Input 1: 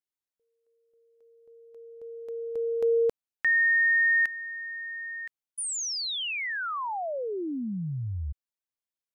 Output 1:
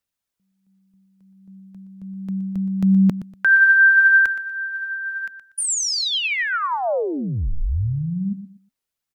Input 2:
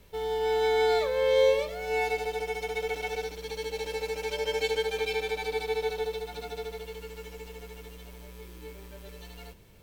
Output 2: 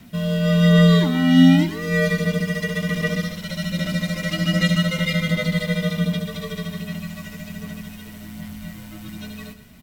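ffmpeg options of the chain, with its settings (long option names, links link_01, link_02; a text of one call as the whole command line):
ffmpeg -i in.wav -af "aecho=1:1:120|240|360:0.211|0.0571|0.0154,afreqshift=-270,aphaser=in_gain=1:out_gain=1:delay=2.1:decay=0.26:speed=1.3:type=sinusoidal,volume=8.5dB" out.wav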